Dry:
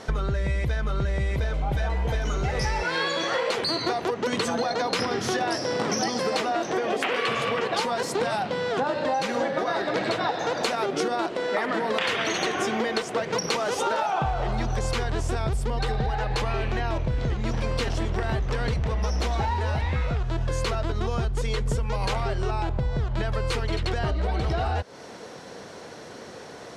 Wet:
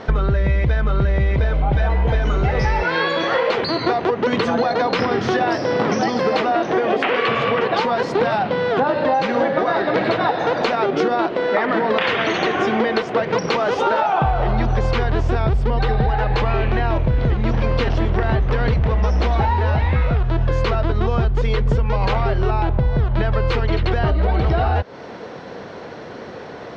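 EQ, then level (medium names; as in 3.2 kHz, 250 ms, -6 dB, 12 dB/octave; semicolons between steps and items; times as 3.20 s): distance through air 240 m; +8.5 dB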